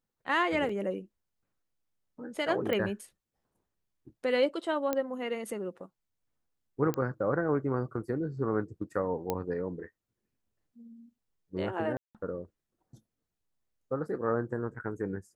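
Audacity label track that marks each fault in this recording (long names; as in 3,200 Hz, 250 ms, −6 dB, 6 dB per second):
0.690000	0.690000	drop-out 3.7 ms
2.730000	2.730000	click −19 dBFS
4.930000	4.930000	click −16 dBFS
6.940000	6.940000	click −18 dBFS
9.300000	9.300000	click −16 dBFS
11.970000	12.150000	drop-out 177 ms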